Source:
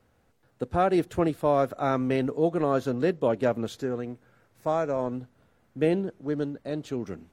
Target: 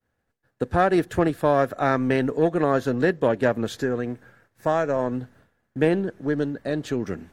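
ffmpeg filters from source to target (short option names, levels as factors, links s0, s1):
-filter_complex "[0:a]aeval=exprs='0.282*(cos(1*acos(clip(val(0)/0.282,-1,1)))-cos(1*PI/2))+0.0355*(cos(2*acos(clip(val(0)/0.282,-1,1)))-cos(2*PI/2))+0.00631*(cos(8*acos(clip(val(0)/0.282,-1,1)))-cos(8*PI/2))':c=same,equalizer=f=1700:t=o:w=0.23:g=10,agate=range=0.0224:threshold=0.00224:ratio=3:detection=peak,asplit=2[s0][s1];[s1]acompressor=threshold=0.0282:ratio=6,volume=1.41[s2];[s0][s2]amix=inputs=2:normalize=0"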